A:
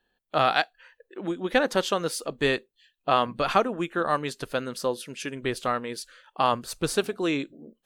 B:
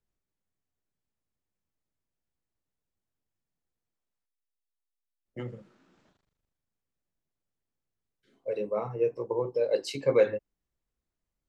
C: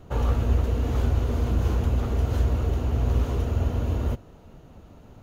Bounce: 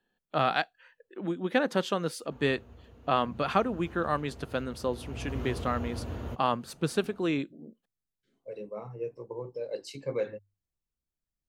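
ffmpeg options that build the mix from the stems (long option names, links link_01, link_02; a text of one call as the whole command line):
ffmpeg -i stem1.wav -i stem2.wav -i stem3.wav -filter_complex "[0:a]highpass=frequency=130:width=0.5412,highpass=frequency=130:width=1.3066,volume=-4.5dB[link_01];[1:a]bass=frequency=250:gain=-2,treble=frequency=4000:gain=9,bandreject=frequency=50:width_type=h:width=6,bandreject=frequency=100:width_type=h:width=6,volume=-9.5dB[link_02];[2:a]highpass=frequency=440:poles=1,adelay=2200,volume=-5.5dB,afade=type=in:start_time=3.18:duration=0.65:silence=0.473151,afade=type=in:start_time=4.81:duration=0.66:silence=0.266073[link_03];[link_01][link_02][link_03]amix=inputs=3:normalize=0,bass=frequency=250:gain=8,treble=frequency=4000:gain=-5" out.wav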